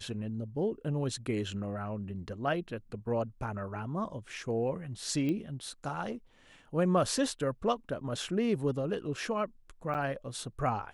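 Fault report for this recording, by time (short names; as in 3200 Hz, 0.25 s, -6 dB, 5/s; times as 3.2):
5.29 pop -23 dBFS
9.94–9.95 gap 7.6 ms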